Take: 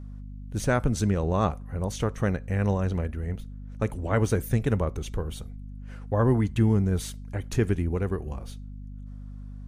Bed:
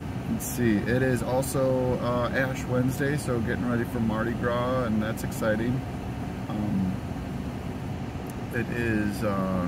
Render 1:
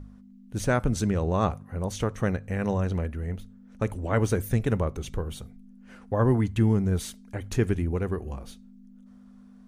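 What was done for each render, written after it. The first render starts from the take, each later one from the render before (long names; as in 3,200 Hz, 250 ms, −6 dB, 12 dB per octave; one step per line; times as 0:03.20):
hum removal 50 Hz, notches 3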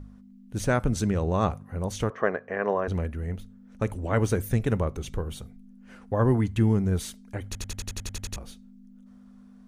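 0:02.10–0:02.88: loudspeaker in its box 310–4,200 Hz, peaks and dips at 420 Hz +7 dB, 650 Hz +8 dB, 1,100 Hz +9 dB, 1,700 Hz +7 dB, 2,600 Hz −4 dB, 3,900 Hz −10 dB
0:07.46: stutter in place 0.09 s, 10 plays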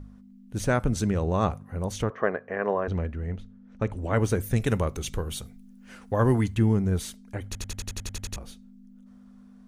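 0:02.02–0:03.97: high-frequency loss of the air 96 metres
0:04.56–0:06.55: high-shelf EQ 2,100 Hz +9 dB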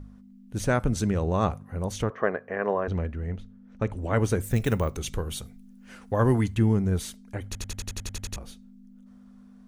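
0:04.42–0:04.96: bad sample-rate conversion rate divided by 2×, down none, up hold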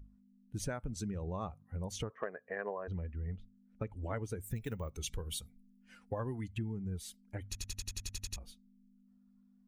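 spectral dynamics exaggerated over time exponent 1.5
downward compressor 10 to 1, threshold −35 dBFS, peak gain reduction 18 dB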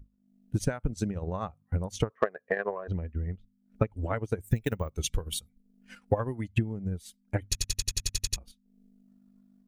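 transient designer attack +10 dB, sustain −10 dB
automatic gain control gain up to 4.5 dB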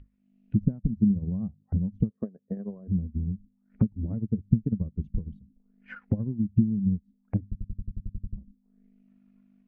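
envelope-controlled low-pass 210–3,000 Hz down, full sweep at −34.5 dBFS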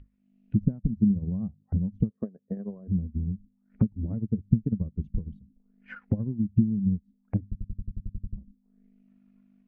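no processing that can be heard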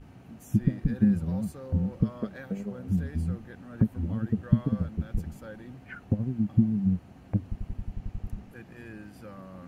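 mix in bed −18 dB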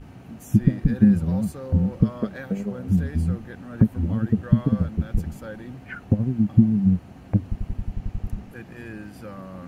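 level +6.5 dB
brickwall limiter −3 dBFS, peak gain reduction 2.5 dB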